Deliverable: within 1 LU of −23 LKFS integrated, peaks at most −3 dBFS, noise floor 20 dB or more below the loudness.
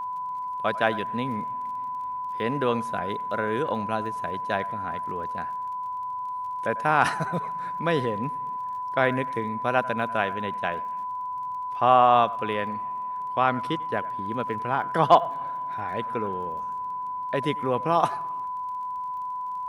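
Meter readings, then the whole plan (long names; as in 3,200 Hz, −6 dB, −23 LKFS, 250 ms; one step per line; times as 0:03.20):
crackle rate 29 per second; interfering tone 1,000 Hz; level of the tone −29 dBFS; integrated loudness −27.0 LKFS; sample peak −4.0 dBFS; target loudness −23.0 LKFS
→ click removal
notch filter 1,000 Hz, Q 30
level +4 dB
brickwall limiter −3 dBFS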